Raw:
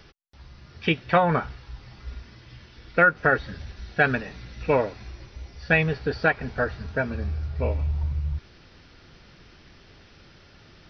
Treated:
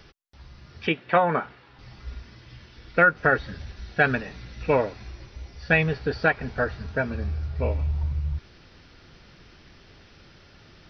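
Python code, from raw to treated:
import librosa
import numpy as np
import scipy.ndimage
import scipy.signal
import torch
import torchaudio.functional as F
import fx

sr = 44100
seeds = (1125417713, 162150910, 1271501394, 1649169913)

y = fx.bandpass_edges(x, sr, low_hz=210.0, high_hz=3100.0, at=(0.87, 1.79))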